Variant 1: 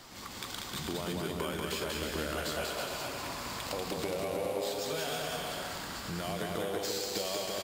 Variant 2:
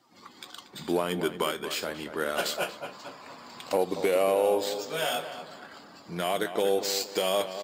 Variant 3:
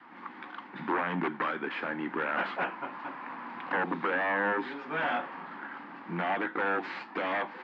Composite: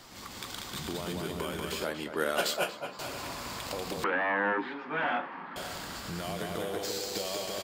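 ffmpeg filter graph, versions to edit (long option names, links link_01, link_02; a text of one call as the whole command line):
ffmpeg -i take0.wav -i take1.wav -i take2.wav -filter_complex "[0:a]asplit=3[link_01][link_02][link_03];[link_01]atrim=end=1.832[link_04];[1:a]atrim=start=1.828:end=2.992[link_05];[link_02]atrim=start=2.988:end=4.042[link_06];[2:a]atrim=start=4.038:end=5.562[link_07];[link_03]atrim=start=5.558[link_08];[link_04][link_05]acrossfade=duration=0.004:curve1=hsin:curve2=hsin[link_09];[link_09][link_06]acrossfade=duration=0.004:curve1=hsin:curve2=hsin[link_10];[link_10][link_07]acrossfade=duration=0.004:curve1=hsin:curve2=hsin[link_11];[link_11][link_08]acrossfade=duration=0.004:curve1=hsin:curve2=hsin" out.wav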